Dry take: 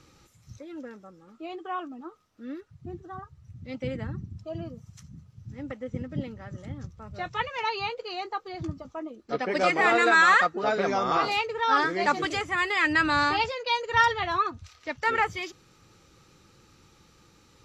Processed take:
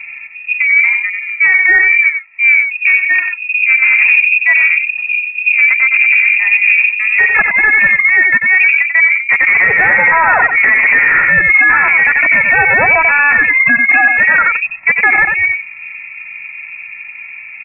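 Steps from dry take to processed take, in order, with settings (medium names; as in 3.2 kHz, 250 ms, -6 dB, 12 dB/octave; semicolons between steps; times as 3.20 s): local Wiener filter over 41 samples; high-pass 120 Hz 12 dB/octave; peaking EQ 750 Hz +10.5 dB 0.37 oct; band-stop 1.4 kHz, Q 7.3; compression 16:1, threshold -31 dBFS, peak gain reduction 18 dB; saturation -35 dBFS, distortion -10 dB; distance through air 490 m; on a send: delay 92 ms -7 dB; on the sum: frequency inversion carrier 2.6 kHz; loudness maximiser +34.5 dB; trim -1 dB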